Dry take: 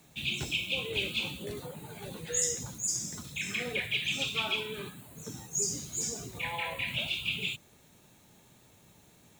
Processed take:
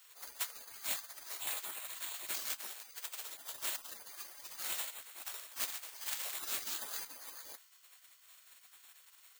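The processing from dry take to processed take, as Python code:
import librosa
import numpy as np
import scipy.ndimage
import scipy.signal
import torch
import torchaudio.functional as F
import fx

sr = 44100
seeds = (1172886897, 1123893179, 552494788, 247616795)

p1 = fx.self_delay(x, sr, depth_ms=0.62)
p2 = fx.notch(p1, sr, hz=4800.0, q=16.0)
p3 = fx.spec_gate(p2, sr, threshold_db=-20, keep='weak')
p4 = fx.low_shelf(p3, sr, hz=300.0, db=-11.5)
p5 = fx.rider(p4, sr, range_db=10, speed_s=0.5)
p6 = p4 + (p5 * 10.0 ** (-2.0 / 20.0))
p7 = (np.kron(scipy.signal.resample_poly(p6, 1, 4), np.eye(4)[0]) * 4)[:len(p6)]
p8 = fx.env_flatten(p7, sr, amount_pct=50, at=(6.01, 7.05))
y = p8 * 10.0 ** (1.0 / 20.0)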